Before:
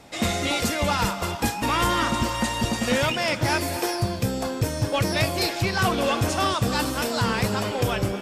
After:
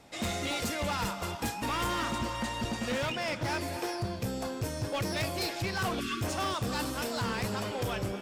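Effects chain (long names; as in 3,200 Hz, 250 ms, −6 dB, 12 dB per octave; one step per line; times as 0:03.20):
0:02.18–0:04.23: high-shelf EQ 7,100 Hz −7.5 dB
0:06.00–0:06.22: time-frequency box erased 440–1,100 Hz
hard clipping −20 dBFS, distortion −14 dB
level −7.5 dB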